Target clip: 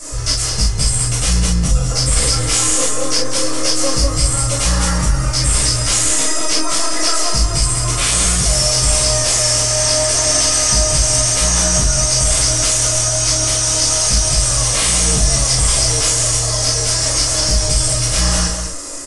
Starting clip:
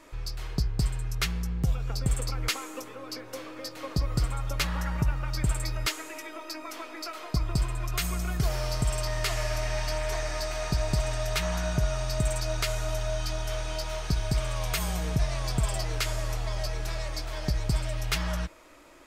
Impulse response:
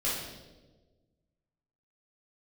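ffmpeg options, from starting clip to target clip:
-filter_complex "[0:a]equalizer=frequency=61:width=6.9:gain=-5.5,bandreject=frequency=2300:width=7.1,alimiter=level_in=2.5dB:limit=-24dB:level=0:latency=1:release=78,volume=-2.5dB,asplit=2[link_01][link_02];[link_02]asetrate=55563,aresample=44100,atempo=0.793701,volume=-17dB[link_03];[link_01][link_03]amix=inputs=2:normalize=0,aexciter=amount=11.5:drive=4.7:freq=5100,aeval=exprs='0.562*sin(PI/2*7.94*val(0)/0.562)':channel_layout=same,aecho=1:1:198:0.422[link_04];[1:a]atrim=start_sample=2205,atrim=end_sample=3528[link_05];[link_04][link_05]afir=irnorm=-1:irlink=0,aresample=22050,aresample=44100,volume=-10.5dB"

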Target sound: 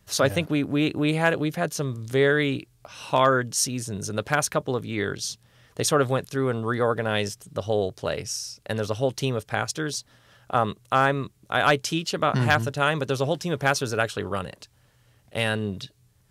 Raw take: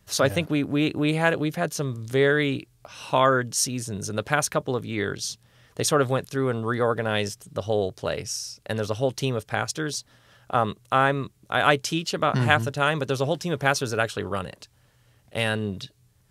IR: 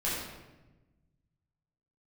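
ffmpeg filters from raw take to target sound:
-af "volume=7.5dB,asoftclip=hard,volume=-7.5dB"

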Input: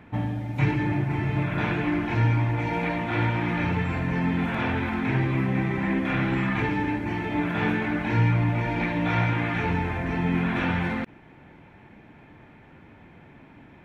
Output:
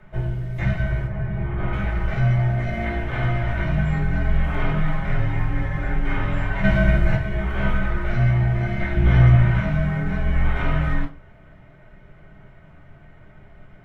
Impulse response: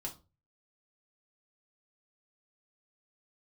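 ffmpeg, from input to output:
-filter_complex "[0:a]asettb=1/sr,asplit=3[link_01][link_02][link_03];[link_01]atrim=end=1.074[link_04];[link_02]atrim=start=1.07:end=1.73,asetpts=PTS-STARTPTS,afade=type=in:duration=0.004:curve=qsin,afade=type=out:start_time=0.656:duration=0.004:curve=qsin,lowpass=frequency=1200:poles=1[link_05];[link_03]atrim=start=1.726[link_06];[link_04][link_05]acrossfade=duration=0.004:curve1=hsin:curve2=qsin[link_07];[link_07][link_06]acrossfade=duration=0.004:curve1=qsin:curve2=hsin,asplit=3[link_08][link_09][link_10];[link_08]afade=type=out:start_time=6.63:duration=0.02[link_11];[link_09]acontrast=75,afade=type=in:start_time=6.63:duration=0.02,afade=type=out:start_time=7.15:duration=0.02[link_12];[link_10]afade=type=in:start_time=7.15:duration=0.02[link_13];[link_11][link_12][link_13]amix=inputs=3:normalize=0,asettb=1/sr,asplit=3[link_14][link_15][link_16];[link_14]atrim=end=8.944[link_17];[link_15]atrim=start=8.94:end=9.57,asetpts=PTS-STARTPTS,afade=type=in:duration=0.004:curve=qsin,afade=type=out:start_time=0.626:duration=0.004:curve=qsin,lowshelf=frequency=280:gain=11.5[link_18];[link_16]atrim=start=9.566[link_19];[link_17][link_18]acrossfade=duration=0.004:curve1=hsin:curve2=qsin[link_20];[link_20][link_19]acrossfade=duration=0.004:curve1=qsin:curve2=hsin,afreqshift=-240[link_21];[1:a]atrim=start_sample=2205[link_22];[link_21][link_22]afir=irnorm=-1:irlink=0,volume=1.5dB"

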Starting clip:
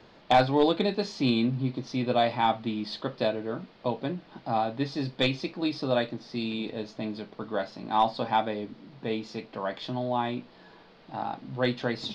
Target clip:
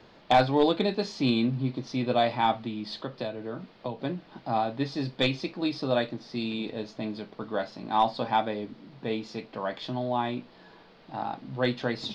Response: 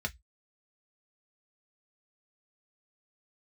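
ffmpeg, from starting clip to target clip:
-filter_complex "[0:a]asettb=1/sr,asplit=3[link_01][link_02][link_03];[link_01]atrim=end=2.544[link_04];[link_02]atrim=start=2.54:end=4,asetpts=PTS-STARTPTS,afade=type=in:duration=0.004:curve=qsin,afade=type=out:start_time=1.456:duration=0.004:curve=qsin,acrossover=split=120[link_05][link_06];[link_06]acompressor=threshold=-32dB:ratio=3[link_07];[link_05][link_07]amix=inputs=2:normalize=0[link_08];[link_03]atrim=start=3.996[link_09];[link_04][link_08]acrossfade=duration=0.004:curve1=hsin:curve2=qsin[link_10];[link_10][link_09]acrossfade=duration=0.004:curve1=qsin:curve2=hsin"

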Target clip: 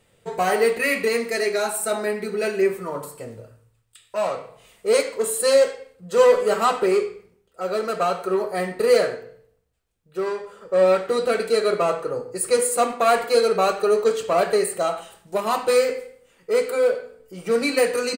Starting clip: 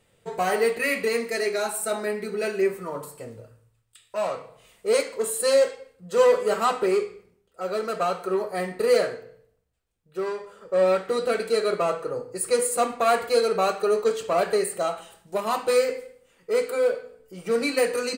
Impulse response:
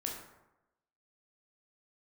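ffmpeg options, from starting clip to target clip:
-filter_complex "[0:a]asettb=1/sr,asplit=3[link_01][link_02][link_03];[link_01]atrim=end=12.574[link_04];[link_02]atrim=start=12.57:end=13.35,asetpts=PTS-STARTPTS,afade=type=in:duration=0.004:curve=qsin,afade=type=out:start_time=0.776:duration=0.004:curve=qsin,highpass=150[link_05];[link_03]atrim=start=13.346[link_06];[link_04][link_05]acrossfade=duration=0.004:curve1=hsin:curve2=qsin[link_07];[link_07][link_06]acrossfade=duration=0.004:curve1=qsin:curve2=hsin,asplit=2[link_08][link_09];[link_09]adelay=90,highpass=300,lowpass=3400,asoftclip=type=hard:threshold=-17dB,volume=-16dB[link_10];[link_08][link_10]amix=inputs=2:normalize=0,volume=3dB"

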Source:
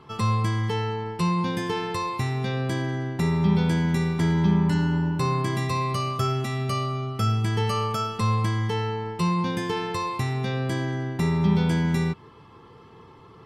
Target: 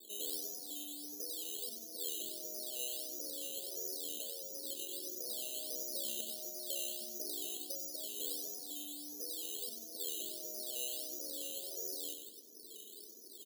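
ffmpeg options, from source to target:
ffmpeg -i in.wav -af "afftfilt=real='re*lt(hypot(re,im),0.112)':imag='im*lt(hypot(re,im),0.112)':win_size=1024:overlap=0.75,asuperpass=centerf=390:order=12:qfactor=0.98,afreqshift=-34,acrusher=samples=10:mix=1:aa=0.000001:lfo=1:lforange=6:lforate=1.5,aderivative,aecho=1:1:95|190|285|380:0.447|0.152|0.0516|0.0176,volume=15dB" out.wav

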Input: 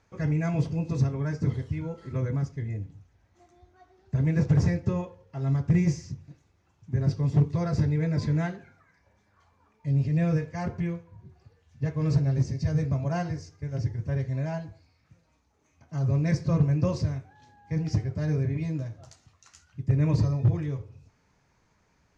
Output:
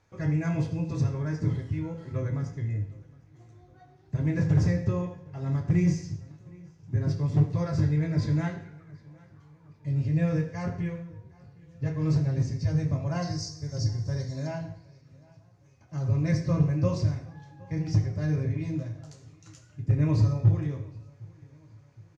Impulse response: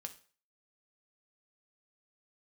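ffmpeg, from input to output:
-filter_complex "[0:a]asettb=1/sr,asplit=3[link_01][link_02][link_03];[link_01]atrim=end=13.224[link_04];[link_02]atrim=start=13.22:end=14.47,asetpts=PTS-STARTPTS,afade=type=in:duration=0.004:curve=qsin,afade=type=out:start_time=1.246:duration=0.004:curve=qsin,highshelf=frequency=3600:width_type=q:width=3:gain=9.5[link_05];[link_03]atrim=start=14.466[link_06];[link_04][link_05]acrossfade=duration=0.004:curve1=hsin:curve2=qsin[link_07];[link_07][link_06]acrossfade=duration=0.004:curve1=qsin:curve2=hsin,asplit=2[link_08][link_09];[link_09]adelay=763,lowpass=frequency=4600:poles=1,volume=-24dB,asplit=2[link_10][link_11];[link_11]adelay=763,lowpass=frequency=4600:poles=1,volume=0.52,asplit=2[link_12][link_13];[link_13]adelay=763,lowpass=frequency=4600:poles=1,volume=0.52[link_14];[link_08][link_10][link_12][link_14]amix=inputs=4:normalize=0[link_15];[1:a]atrim=start_sample=2205,asetrate=26901,aresample=44100[link_16];[link_15][link_16]afir=irnorm=-1:irlink=0"

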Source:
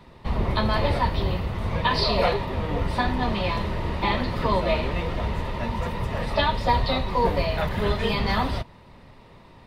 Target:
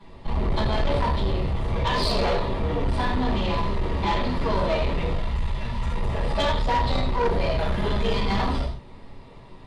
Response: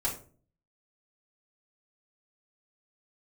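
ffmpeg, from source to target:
-filter_complex "[0:a]asettb=1/sr,asplit=3[link_01][link_02][link_03];[link_01]atrim=end=5.154[link_04];[link_02]atrim=start=5.15:end=5.95,asetpts=PTS-STARTPTS,afade=type=in:duration=0.004:curve=qsin,afade=type=out:start_time=0.796:duration=0.004:curve=qsin,equalizer=frequency=400:width=0.61:gain=-11[link_05];[link_03]atrim=start=5.946[link_06];[link_04][link_05]acrossfade=duration=0.004:curve1=hsin:curve2=qsin[link_07];[link_07][link_06]acrossfade=duration=0.004:curve1=qsin:curve2=hsin[link_08];[1:a]atrim=start_sample=2205,atrim=end_sample=3969,asetrate=22050,aresample=44100[link_09];[link_08][link_09]afir=irnorm=-1:irlink=0,asoftclip=type=tanh:threshold=-8.5dB,volume=-9dB"

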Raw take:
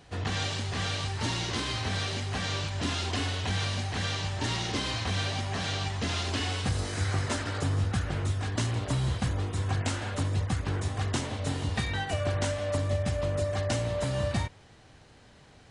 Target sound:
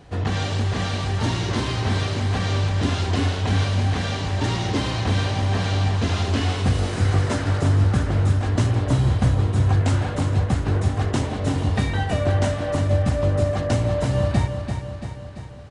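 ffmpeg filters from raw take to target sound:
ffmpeg -i in.wav -af "tiltshelf=frequency=1300:gain=4.5,aecho=1:1:339|678|1017|1356|1695|2034|2373:0.422|0.245|0.142|0.0823|0.0477|0.0277|0.0161,volume=4.5dB" out.wav

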